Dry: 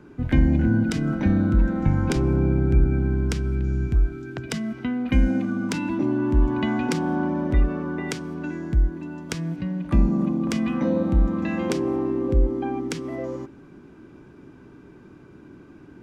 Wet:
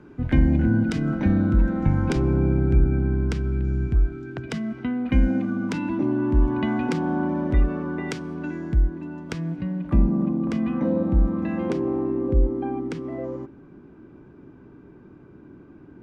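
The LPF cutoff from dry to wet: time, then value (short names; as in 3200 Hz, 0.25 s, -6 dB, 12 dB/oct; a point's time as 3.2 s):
LPF 6 dB/oct
3900 Hz
from 2.75 s 2500 Hz
from 7.29 s 4000 Hz
from 8.8 s 2200 Hz
from 9.9 s 1200 Hz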